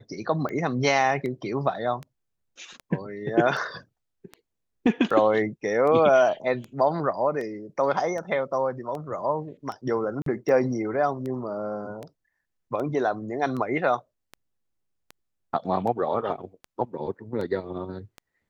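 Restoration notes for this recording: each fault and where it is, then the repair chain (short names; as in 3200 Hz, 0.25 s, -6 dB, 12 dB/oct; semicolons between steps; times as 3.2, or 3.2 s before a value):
tick 78 rpm -23 dBFS
10.22–10.26 gap 43 ms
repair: de-click; interpolate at 10.22, 43 ms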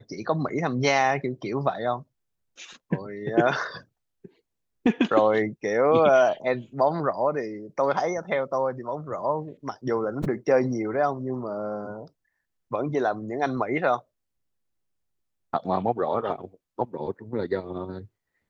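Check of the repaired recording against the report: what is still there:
none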